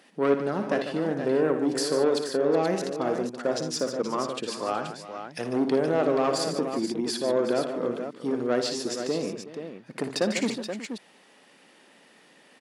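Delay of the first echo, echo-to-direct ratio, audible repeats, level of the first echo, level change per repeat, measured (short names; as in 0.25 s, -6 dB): 57 ms, -4.0 dB, 4, -9.5 dB, no steady repeat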